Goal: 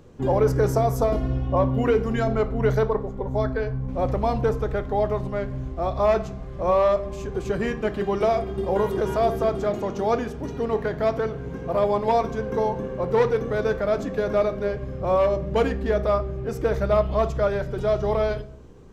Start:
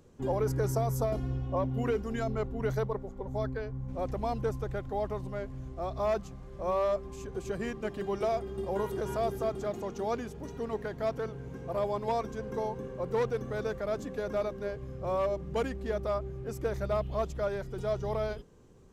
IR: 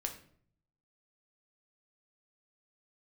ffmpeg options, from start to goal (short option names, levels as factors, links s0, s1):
-filter_complex "[0:a]asplit=2[s0][s1];[1:a]atrim=start_sample=2205,lowpass=5500[s2];[s1][s2]afir=irnorm=-1:irlink=0,volume=1.12[s3];[s0][s3]amix=inputs=2:normalize=0,volume=1.5"